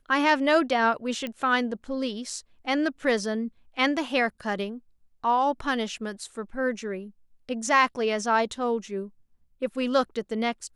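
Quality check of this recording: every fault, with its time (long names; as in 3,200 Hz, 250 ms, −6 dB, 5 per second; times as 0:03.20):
0:01.27: click −19 dBFS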